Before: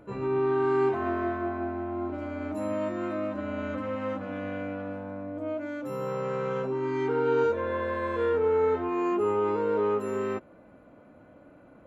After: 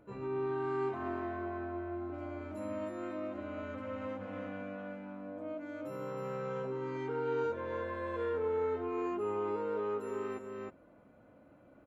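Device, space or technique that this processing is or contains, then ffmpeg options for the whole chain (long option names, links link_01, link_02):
ducked delay: -filter_complex "[0:a]asplit=3[link_01][link_02][link_03];[link_02]adelay=312,volume=-2.5dB[link_04];[link_03]apad=whole_len=536966[link_05];[link_04][link_05]sidechaincompress=threshold=-31dB:ratio=8:attack=6.5:release=562[link_06];[link_01][link_06]amix=inputs=2:normalize=0,volume=-9dB"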